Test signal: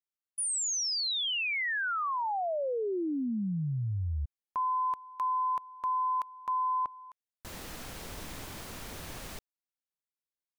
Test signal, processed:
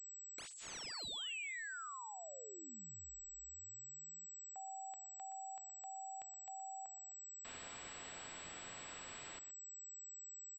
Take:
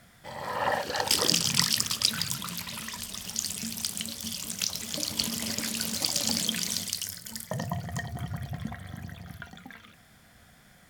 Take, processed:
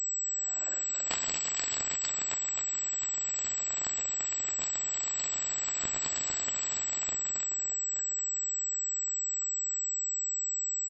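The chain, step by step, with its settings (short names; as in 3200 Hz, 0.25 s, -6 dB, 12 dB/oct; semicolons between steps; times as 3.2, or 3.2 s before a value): differentiator; frequency shift -250 Hz; on a send: echo 0.121 s -15.5 dB; on the sum: pulse-width modulation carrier 7800 Hz; gain -3.5 dB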